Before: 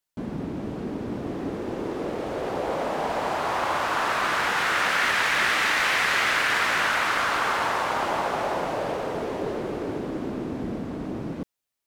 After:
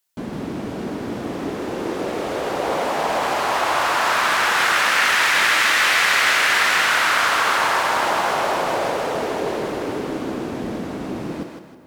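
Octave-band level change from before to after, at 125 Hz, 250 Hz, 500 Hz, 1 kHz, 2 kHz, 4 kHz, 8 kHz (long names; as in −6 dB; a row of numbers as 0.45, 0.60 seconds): +1.5, +3.5, +4.5, +5.5, +6.0, +7.5, +9.5 decibels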